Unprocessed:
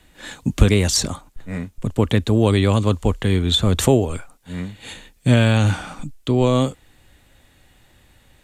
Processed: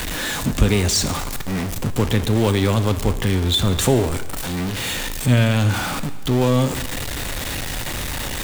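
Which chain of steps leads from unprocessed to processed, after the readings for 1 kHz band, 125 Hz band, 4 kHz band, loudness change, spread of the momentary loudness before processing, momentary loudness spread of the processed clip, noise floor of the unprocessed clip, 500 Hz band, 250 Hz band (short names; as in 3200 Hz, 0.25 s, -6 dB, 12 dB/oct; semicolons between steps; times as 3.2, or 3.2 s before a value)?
+1.5 dB, -0.5 dB, +1.5 dB, -2.0 dB, 17 LU, 9 LU, -56 dBFS, -1.5 dB, -1.0 dB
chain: zero-crossing step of -16.5 dBFS; plate-style reverb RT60 1.2 s, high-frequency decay 1×, DRR 10.5 dB; gain -4 dB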